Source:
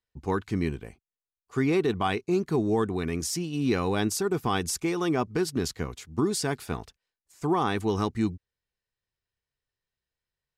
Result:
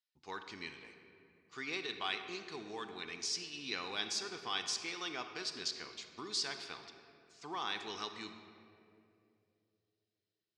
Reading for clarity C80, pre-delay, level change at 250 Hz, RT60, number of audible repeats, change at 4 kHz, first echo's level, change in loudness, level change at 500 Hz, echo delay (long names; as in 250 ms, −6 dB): 8.5 dB, 33 ms, −23.0 dB, 2.7 s, no echo audible, −0.5 dB, no echo audible, −12.0 dB, −19.5 dB, no echo audible